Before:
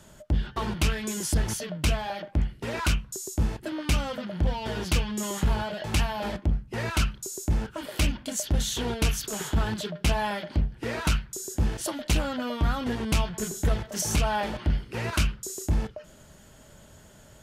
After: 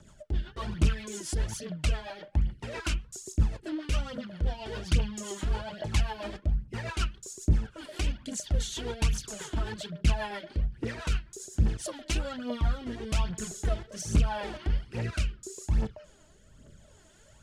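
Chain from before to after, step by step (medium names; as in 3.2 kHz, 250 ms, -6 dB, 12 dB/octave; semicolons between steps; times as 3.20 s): low-pass 10 kHz 24 dB/octave; phaser 1.2 Hz, delay 3.3 ms, feedback 58%; rotary cabinet horn 7.5 Hz, later 0.8 Hz, at 11.89 s; trim -5 dB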